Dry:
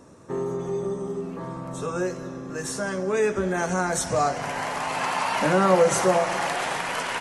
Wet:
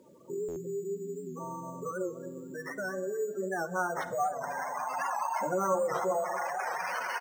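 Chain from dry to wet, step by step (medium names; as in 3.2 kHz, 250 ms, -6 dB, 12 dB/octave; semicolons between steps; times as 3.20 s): one-sided wavefolder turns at -16.5 dBFS; spectral gate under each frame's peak -10 dB strong; careless resampling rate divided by 6×, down none, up hold; high-pass 810 Hz 6 dB/octave; treble shelf 5 kHz -11.5 dB; in parallel at +3 dB: compression 12:1, threshold -39 dBFS, peak gain reduction 17 dB; on the sum: peaking EQ 1.5 kHz +2.5 dB 0.69 oct; on a send: feedback delay 245 ms, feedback 56%, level -22 dB; on the sum: simulated room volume 3200 m³, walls furnished, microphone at 0.98 m; bit crusher 11-bit; buffer glitch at 0.48 s, samples 512, times 6; warped record 78 rpm, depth 100 cents; trim -5.5 dB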